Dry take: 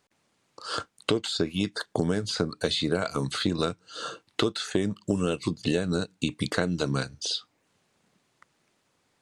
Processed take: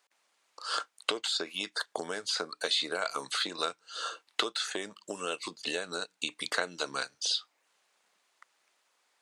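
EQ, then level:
high-pass filter 720 Hz 12 dB per octave
0.0 dB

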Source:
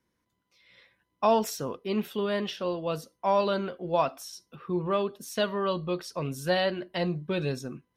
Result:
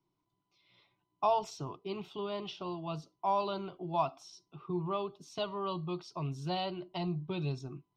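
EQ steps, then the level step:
dynamic equaliser 390 Hz, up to −6 dB, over −38 dBFS, Q 0.74
high-frequency loss of the air 160 metres
phaser with its sweep stopped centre 340 Hz, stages 8
0.0 dB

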